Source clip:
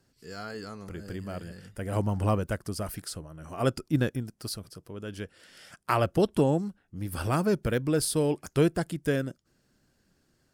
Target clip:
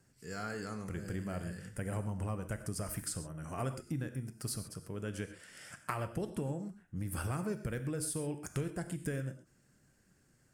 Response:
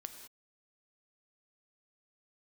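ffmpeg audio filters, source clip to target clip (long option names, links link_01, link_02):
-filter_complex "[0:a]equalizer=frequency=125:width_type=o:width=1:gain=6,equalizer=frequency=2000:width_type=o:width=1:gain=5,equalizer=frequency=4000:width_type=o:width=1:gain=-7,equalizer=frequency=8000:width_type=o:width=1:gain=8,acompressor=threshold=-31dB:ratio=10[link_01];[1:a]atrim=start_sample=2205,atrim=end_sample=6174[link_02];[link_01][link_02]afir=irnorm=-1:irlink=0,volume=1.5dB"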